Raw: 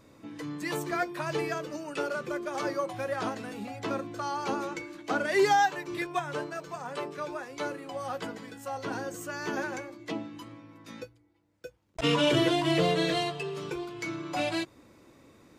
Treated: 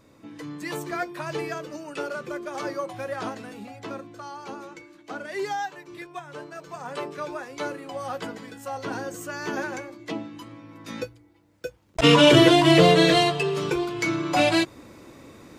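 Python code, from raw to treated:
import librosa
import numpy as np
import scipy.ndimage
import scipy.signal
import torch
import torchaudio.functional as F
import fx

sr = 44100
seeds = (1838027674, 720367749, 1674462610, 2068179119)

y = fx.gain(x, sr, db=fx.line((3.3, 0.5), (4.43, -6.5), (6.28, -6.5), (6.89, 3.0), (10.48, 3.0), (11.01, 10.0)))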